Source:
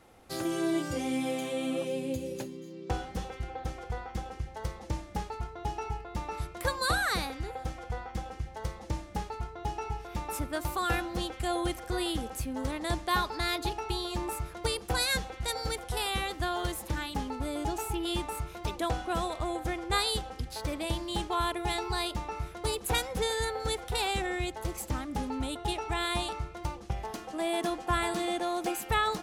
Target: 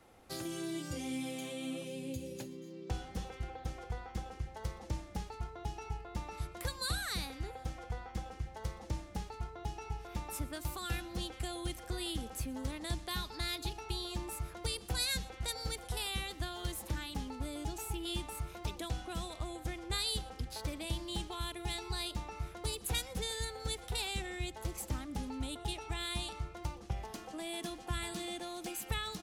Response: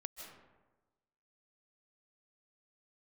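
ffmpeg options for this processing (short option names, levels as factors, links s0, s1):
-filter_complex "[0:a]acrossover=split=250|2300[s0][s1][s2];[s1]acompressor=threshold=0.00891:ratio=6[s3];[s2]aecho=1:1:121:0.0794[s4];[s0][s3][s4]amix=inputs=3:normalize=0,volume=0.668"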